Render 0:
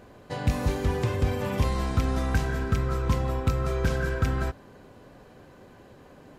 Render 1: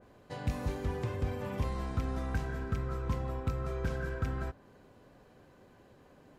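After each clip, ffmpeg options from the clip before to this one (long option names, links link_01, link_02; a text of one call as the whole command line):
ffmpeg -i in.wav -af "adynamicequalizer=threshold=0.00447:dfrequency=2400:dqfactor=0.7:tfrequency=2400:tqfactor=0.7:attack=5:release=100:ratio=0.375:range=2.5:mode=cutabove:tftype=highshelf,volume=-8.5dB" out.wav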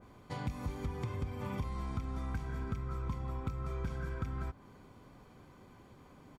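ffmpeg -i in.wav -af "aecho=1:1:0.9:0.44,acompressor=threshold=-36dB:ratio=5,volume=1.5dB" out.wav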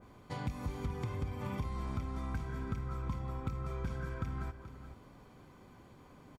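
ffmpeg -i in.wav -af "aecho=1:1:430:0.237" out.wav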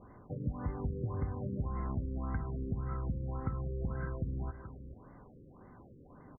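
ffmpeg -i in.wav -af "afftfilt=real='re*lt(b*sr/1024,530*pow(2200/530,0.5+0.5*sin(2*PI*1.8*pts/sr)))':imag='im*lt(b*sr/1024,530*pow(2200/530,0.5+0.5*sin(2*PI*1.8*pts/sr)))':win_size=1024:overlap=0.75,volume=2dB" out.wav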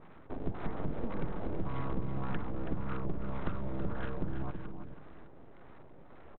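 ffmpeg -i in.wav -af "aresample=8000,aeval=exprs='abs(val(0))':channel_layout=same,aresample=44100,aecho=1:1:327:0.376,volume=3dB" out.wav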